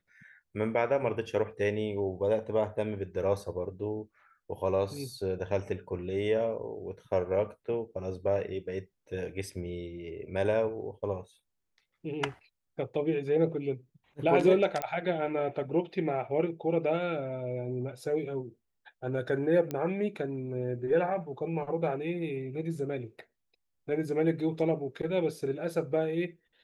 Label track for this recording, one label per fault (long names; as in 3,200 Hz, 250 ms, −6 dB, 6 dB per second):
14.820000	14.820000	click −16 dBFS
19.710000	19.710000	click −20 dBFS